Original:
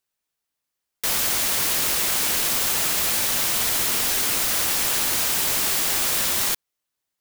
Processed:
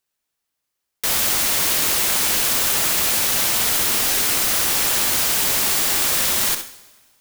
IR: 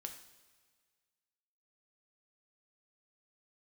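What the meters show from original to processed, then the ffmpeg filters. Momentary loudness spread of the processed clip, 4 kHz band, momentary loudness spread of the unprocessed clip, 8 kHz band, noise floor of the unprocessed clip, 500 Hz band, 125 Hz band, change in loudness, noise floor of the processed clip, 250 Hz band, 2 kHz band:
2 LU, +3.0 dB, 1 LU, +3.0 dB, -83 dBFS, +3.5 dB, +3.0 dB, +3.0 dB, -79 dBFS, +3.5 dB, +3.0 dB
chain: -filter_complex "[0:a]asplit=2[a][b];[1:a]atrim=start_sample=2205,adelay=65[c];[b][c]afir=irnorm=-1:irlink=0,volume=-4dB[d];[a][d]amix=inputs=2:normalize=0,volume=2.5dB"

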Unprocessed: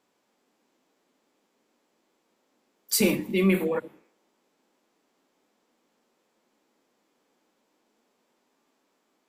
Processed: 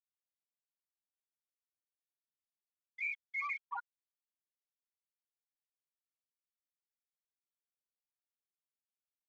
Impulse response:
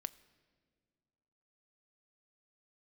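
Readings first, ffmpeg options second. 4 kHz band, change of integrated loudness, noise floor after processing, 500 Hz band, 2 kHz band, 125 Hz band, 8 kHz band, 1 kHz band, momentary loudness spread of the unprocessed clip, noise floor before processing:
under -30 dB, -14.5 dB, under -85 dBFS, under -40 dB, -5.0 dB, under -40 dB, under -40 dB, -3.5 dB, 7 LU, -74 dBFS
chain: -af "asuperpass=centerf=1400:order=20:qfactor=0.81,aresample=11025,asoftclip=type=hard:threshold=-32.5dB,aresample=44100,afftfilt=real='re*gte(hypot(re,im),0.0631)':imag='im*gte(hypot(re,im),0.0631)':win_size=1024:overlap=0.75,asoftclip=type=tanh:threshold=-31dB,afwtdn=0.00112,volume=2dB"

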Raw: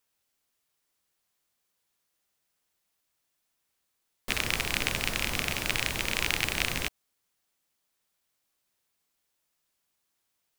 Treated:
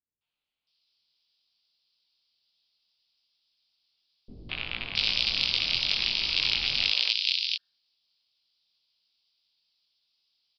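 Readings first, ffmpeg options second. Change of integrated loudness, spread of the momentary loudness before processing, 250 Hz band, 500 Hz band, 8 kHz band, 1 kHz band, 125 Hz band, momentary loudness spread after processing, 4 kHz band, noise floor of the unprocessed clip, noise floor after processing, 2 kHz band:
+3.5 dB, 6 LU, -8.0 dB, -9.5 dB, -12.0 dB, -8.0 dB, -7.5 dB, 10 LU, +8.5 dB, -79 dBFS, under -85 dBFS, -1.0 dB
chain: -filter_complex "[0:a]bandreject=f=89.02:t=h:w=4,bandreject=f=178.04:t=h:w=4,bandreject=f=267.06:t=h:w=4,bandreject=f=356.08:t=h:w=4,bandreject=f=445.1:t=h:w=4,bandreject=f=534.12:t=h:w=4,bandreject=f=623.14:t=h:w=4,bandreject=f=712.16:t=h:w=4,bandreject=f=801.18:t=h:w=4,bandreject=f=890.2:t=h:w=4,bandreject=f=979.22:t=h:w=4,bandreject=f=1.06824k:t=h:w=4,bandreject=f=1.15726k:t=h:w=4,bandreject=f=1.24628k:t=h:w=4,bandreject=f=1.3353k:t=h:w=4,bandreject=f=1.42432k:t=h:w=4,bandreject=f=1.51334k:t=h:w=4,bandreject=f=1.60236k:t=h:w=4,bandreject=f=1.69138k:t=h:w=4,bandreject=f=1.7804k:t=h:w=4,flanger=delay=17.5:depth=6.6:speed=1.1,aexciter=amount=5.6:drive=9.5:freq=2.7k,aresample=11025,aresample=44100,acrossover=split=410|2500[a][b][c];[b]adelay=210[d];[c]adelay=670[e];[a][d][e]amix=inputs=3:normalize=0,aeval=exprs='0.794*(cos(1*acos(clip(val(0)/0.794,-1,1)))-cos(1*PI/2))+0.0158*(cos(2*acos(clip(val(0)/0.794,-1,1)))-cos(2*PI/2))':c=same,volume=-4dB"

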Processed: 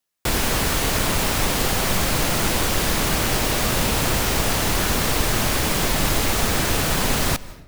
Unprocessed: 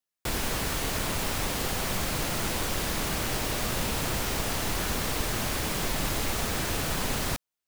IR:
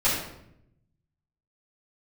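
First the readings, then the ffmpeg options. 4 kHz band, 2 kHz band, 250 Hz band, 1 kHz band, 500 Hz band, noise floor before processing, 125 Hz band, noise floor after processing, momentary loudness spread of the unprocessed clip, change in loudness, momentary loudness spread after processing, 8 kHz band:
+8.5 dB, +8.5 dB, +8.5 dB, +8.5 dB, +8.5 dB, under -85 dBFS, +8.5 dB, -39 dBFS, 0 LU, +8.5 dB, 0 LU, +8.5 dB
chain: -filter_complex "[0:a]asplit=2[a][b];[1:a]atrim=start_sample=2205,adelay=148[c];[b][c]afir=irnorm=-1:irlink=0,volume=-33dB[d];[a][d]amix=inputs=2:normalize=0,volume=8.5dB"

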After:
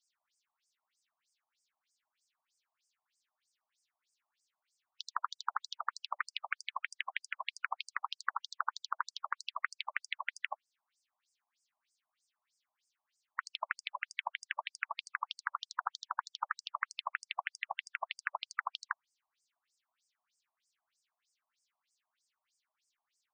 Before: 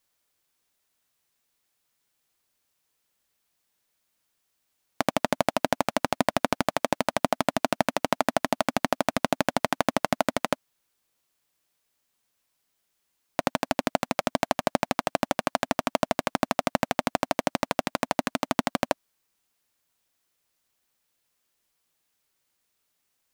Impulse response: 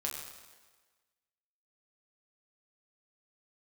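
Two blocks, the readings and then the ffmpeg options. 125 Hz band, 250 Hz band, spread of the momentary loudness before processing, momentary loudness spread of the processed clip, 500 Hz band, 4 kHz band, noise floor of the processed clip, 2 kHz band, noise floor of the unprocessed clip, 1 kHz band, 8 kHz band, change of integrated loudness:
under -40 dB, under -40 dB, 3 LU, 3 LU, -31.0 dB, -8.5 dB, under -85 dBFS, -6.5 dB, -76 dBFS, -11.5 dB, -16.0 dB, -12.0 dB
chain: -filter_complex "[0:a]afftfilt=real='re*lt(hypot(re,im),0.2)':imag='im*lt(hypot(re,im),0.2)':win_size=1024:overlap=0.75,acrossover=split=170|4100[a][b][c];[c]acompressor=threshold=-49dB:ratio=6[d];[a][b][d]amix=inputs=3:normalize=0,afftfilt=real='re*between(b*sr/1024,810*pow(6800/810,0.5+0.5*sin(2*PI*3.2*pts/sr))/1.41,810*pow(6800/810,0.5+0.5*sin(2*PI*3.2*pts/sr))*1.41)':imag='im*between(b*sr/1024,810*pow(6800/810,0.5+0.5*sin(2*PI*3.2*pts/sr))/1.41,810*pow(6800/810,0.5+0.5*sin(2*PI*3.2*pts/sr))*1.41)':win_size=1024:overlap=0.75,volume=1dB"

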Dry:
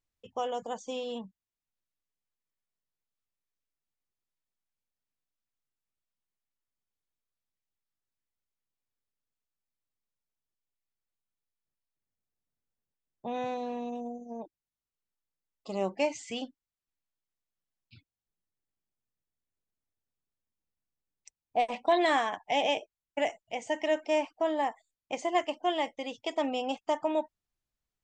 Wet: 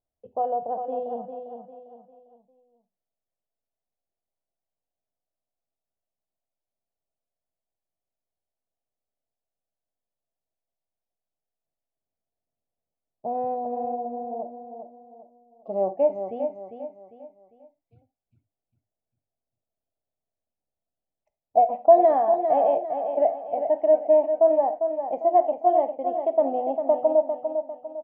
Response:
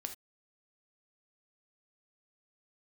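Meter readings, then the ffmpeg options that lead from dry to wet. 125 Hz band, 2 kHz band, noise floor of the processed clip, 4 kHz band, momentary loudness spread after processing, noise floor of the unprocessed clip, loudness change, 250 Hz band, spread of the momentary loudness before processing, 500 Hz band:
n/a, under -15 dB, under -85 dBFS, under -25 dB, 18 LU, under -85 dBFS, +8.5 dB, +1.5 dB, 14 LU, +11.0 dB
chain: -filter_complex "[0:a]lowpass=f=670:t=q:w=4.9,aecho=1:1:400|800|1200|1600:0.422|0.16|0.0609|0.0231,asplit=2[a][b];[1:a]atrim=start_sample=2205[c];[b][c]afir=irnorm=-1:irlink=0,volume=2dB[d];[a][d]amix=inputs=2:normalize=0,volume=-7dB"

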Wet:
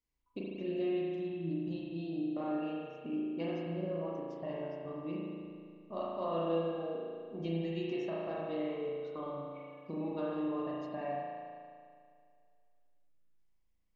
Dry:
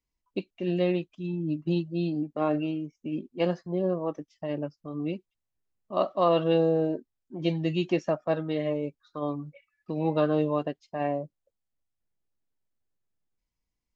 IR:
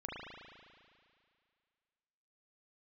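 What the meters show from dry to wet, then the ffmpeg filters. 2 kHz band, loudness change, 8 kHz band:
-9.0 dB, -9.0 dB, n/a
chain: -filter_complex "[0:a]acompressor=threshold=-36dB:ratio=3[a];[1:a]atrim=start_sample=2205[b];[a][b]afir=irnorm=-1:irlink=0"

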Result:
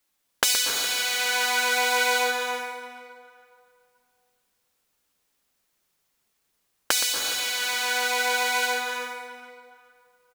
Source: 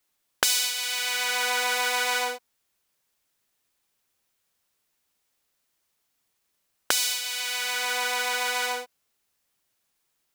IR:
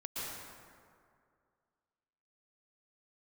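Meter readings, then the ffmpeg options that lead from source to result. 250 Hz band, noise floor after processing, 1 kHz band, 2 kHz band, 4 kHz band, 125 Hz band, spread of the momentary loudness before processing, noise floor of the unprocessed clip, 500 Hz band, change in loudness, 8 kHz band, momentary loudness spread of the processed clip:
+5.5 dB, -74 dBFS, +3.0 dB, +3.0 dB, +2.0 dB, n/a, 5 LU, -76 dBFS, +4.5 dB, +2.0 dB, +2.0 dB, 13 LU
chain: -filter_complex "[0:a]flanger=delay=3.5:depth=2.2:regen=-56:speed=0.43:shape=triangular,asplit=2[a][b];[b]adelay=415,lowpass=f=3.5k:p=1,volume=-16dB,asplit=2[c][d];[d]adelay=415,lowpass=f=3.5k:p=1,volume=0.31,asplit=2[e][f];[f]adelay=415,lowpass=f=3.5k:p=1,volume=0.31[g];[a][c][e][g]amix=inputs=4:normalize=0,asplit=2[h][i];[1:a]atrim=start_sample=2205,lowshelf=f=410:g=5.5,adelay=121[j];[i][j]afir=irnorm=-1:irlink=0,volume=-6.5dB[k];[h][k]amix=inputs=2:normalize=0,volume=5dB"

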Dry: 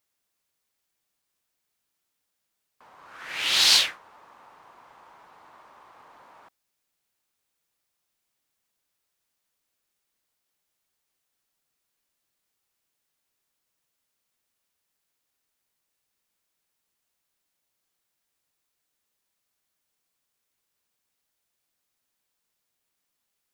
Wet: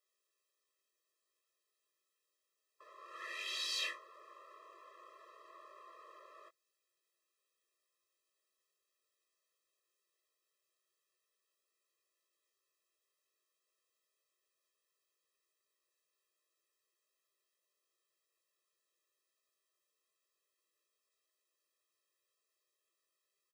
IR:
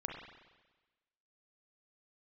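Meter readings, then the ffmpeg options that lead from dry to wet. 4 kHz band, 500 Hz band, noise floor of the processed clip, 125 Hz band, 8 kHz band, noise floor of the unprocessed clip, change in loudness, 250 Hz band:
-19.5 dB, -10.0 dB, under -85 dBFS, n/a, -20.5 dB, -80 dBFS, -20.0 dB, -17.0 dB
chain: -filter_complex "[0:a]equalizer=f=16k:t=o:w=0.56:g=-10,areverse,acompressor=threshold=-32dB:ratio=8,areverse,asplit=2[a][b];[b]adelay=20,volume=-6.5dB[c];[a][c]amix=inputs=2:normalize=0,afftfilt=real='re*eq(mod(floor(b*sr/1024/340),2),1)':imag='im*eq(mod(floor(b*sr/1024/340),2),1)':win_size=1024:overlap=0.75,volume=-2.5dB"

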